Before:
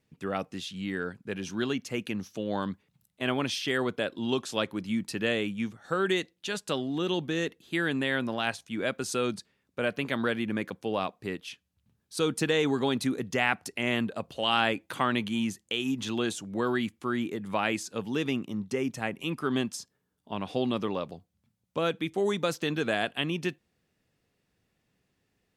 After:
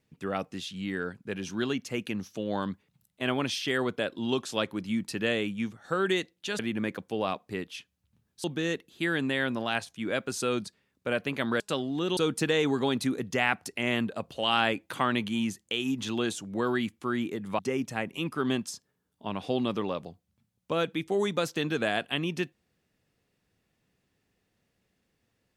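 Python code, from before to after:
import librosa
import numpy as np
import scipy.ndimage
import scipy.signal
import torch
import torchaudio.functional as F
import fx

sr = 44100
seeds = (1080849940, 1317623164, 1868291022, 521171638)

y = fx.edit(x, sr, fx.swap(start_s=6.59, length_s=0.57, other_s=10.32, other_length_s=1.85),
    fx.cut(start_s=17.59, length_s=1.06), tone=tone)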